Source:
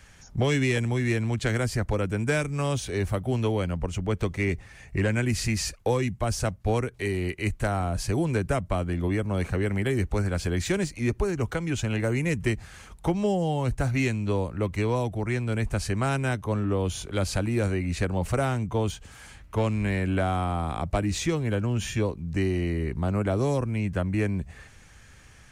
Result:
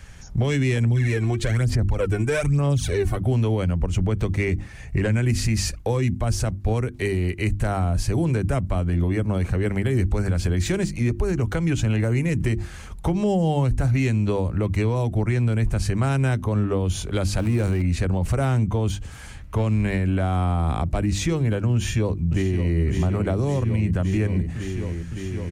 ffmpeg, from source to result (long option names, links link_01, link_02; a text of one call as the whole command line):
ffmpeg -i in.wav -filter_complex "[0:a]asettb=1/sr,asplit=3[link_01][link_02][link_03];[link_01]atrim=end=0.834[link_04];[link_02]atrim=start=0.83:end=3.17,asetpts=PTS-STARTPTS,afade=type=in:duration=0.004:curve=qsin,afade=type=out:start_time=2.336:duration=0.004:curve=qsin,aphaser=in_gain=1:out_gain=1:delay=2.8:decay=0.65:speed=1.1:type=sinusoidal[link_05];[link_03]atrim=start=3.166[link_06];[link_04][link_05]acrossfade=duration=0.004:curve1=hsin:curve2=qsin[link_07];[link_07][link_06]acrossfade=duration=0.004:curve1=qsin:curve2=hsin,asettb=1/sr,asplit=3[link_08][link_09][link_10];[link_08]atrim=end=17.384[link_11];[link_09]atrim=start=17.38:end=17.82,asetpts=PTS-STARTPTS,afade=type=in:duration=0.004:curve=qsin,afade=type=out:start_time=0.436:duration=0.004:curve=qsin,aeval=exprs='val(0)+0.5*0.0168*sgn(val(0))':channel_layout=same[link_12];[link_10]atrim=start=17.816[link_13];[link_11][link_12]acrossfade=duration=0.004:curve1=hsin:curve2=qsin[link_14];[link_14][link_13]acrossfade=duration=0.004:curve1=qsin:curve2=hsin,asplit=2[link_15][link_16];[link_16]afade=type=in:start_time=21.75:duration=0.01,afade=type=out:start_time=22.78:duration=0.01,aecho=0:1:560|1120|1680|2240|2800|3360|3920|4480|5040|5600|6160|6720:0.375837|0.319462|0.271543|0.230811|0.196189|0.166761|0.141747|0.120485|0.102412|0.0870503|0.0739928|0.0628939[link_17];[link_15][link_17]amix=inputs=2:normalize=0,lowshelf=frequency=220:gain=9.5,bandreject=frequency=50:width_type=h:width=6,bandreject=frequency=100:width_type=h:width=6,bandreject=frequency=150:width_type=h:width=6,bandreject=frequency=200:width_type=h:width=6,bandreject=frequency=250:width_type=h:width=6,bandreject=frequency=300:width_type=h:width=6,bandreject=frequency=350:width_type=h:width=6,alimiter=limit=-18dB:level=0:latency=1:release=101,volume=4dB" out.wav